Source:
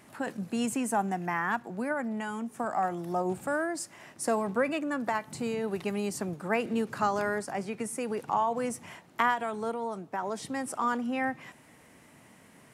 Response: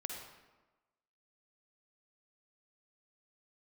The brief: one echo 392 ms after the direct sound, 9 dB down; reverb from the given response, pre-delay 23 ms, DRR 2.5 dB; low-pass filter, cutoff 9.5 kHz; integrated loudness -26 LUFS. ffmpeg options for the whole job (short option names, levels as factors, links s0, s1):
-filter_complex "[0:a]lowpass=9500,aecho=1:1:392:0.355,asplit=2[s0][s1];[1:a]atrim=start_sample=2205,adelay=23[s2];[s1][s2]afir=irnorm=-1:irlink=0,volume=0.794[s3];[s0][s3]amix=inputs=2:normalize=0,volume=1.5"